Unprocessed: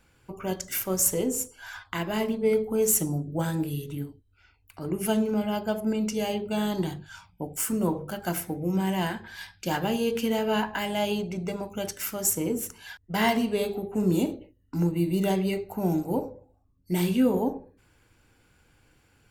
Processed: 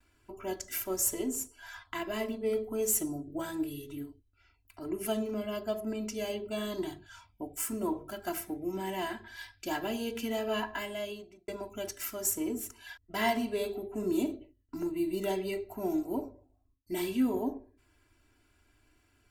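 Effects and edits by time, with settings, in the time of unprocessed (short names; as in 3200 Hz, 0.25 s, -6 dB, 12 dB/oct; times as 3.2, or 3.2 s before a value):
10.72–11.48 fade out
whole clip: gate with hold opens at -58 dBFS; comb 3 ms, depth 87%; gain -8 dB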